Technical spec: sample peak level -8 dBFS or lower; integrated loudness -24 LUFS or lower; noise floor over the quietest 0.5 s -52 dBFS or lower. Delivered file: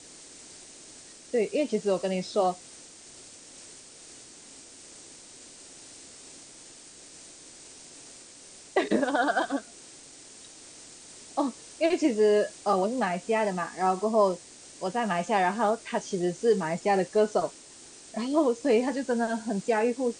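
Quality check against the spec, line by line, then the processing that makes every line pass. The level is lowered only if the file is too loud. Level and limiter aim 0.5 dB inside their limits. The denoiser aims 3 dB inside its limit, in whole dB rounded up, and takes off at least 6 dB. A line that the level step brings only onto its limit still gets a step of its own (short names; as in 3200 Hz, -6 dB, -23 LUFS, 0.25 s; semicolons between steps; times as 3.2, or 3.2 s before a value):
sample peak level -11.0 dBFS: OK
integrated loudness -27.0 LUFS: OK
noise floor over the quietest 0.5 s -49 dBFS: fail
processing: denoiser 6 dB, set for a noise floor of -49 dBFS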